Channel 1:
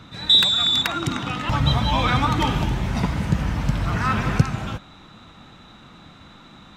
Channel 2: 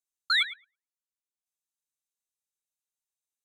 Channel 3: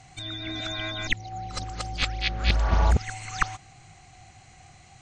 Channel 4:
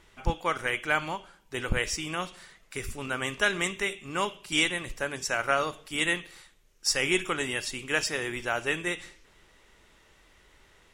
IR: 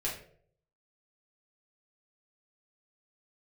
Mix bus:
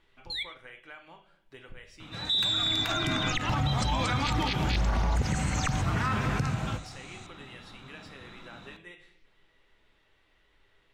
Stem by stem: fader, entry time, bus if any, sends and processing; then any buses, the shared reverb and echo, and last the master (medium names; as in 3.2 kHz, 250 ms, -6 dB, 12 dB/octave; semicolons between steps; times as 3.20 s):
-6.0 dB, 2.00 s, send -11 dB, none
-10.5 dB, 0.00 s, send -12 dB, steep high-pass 2 kHz 96 dB/octave
+1.0 dB, 2.25 s, no send, treble shelf 8.8 kHz +10 dB
-13.0 dB, 0.00 s, send -5 dB, resonant high shelf 5 kHz -8 dB, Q 1.5; compression 2.5:1, threshold -42 dBFS, peak gain reduction 15.5 dB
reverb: on, RT60 0.60 s, pre-delay 4 ms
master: peak limiter -19 dBFS, peak gain reduction 11 dB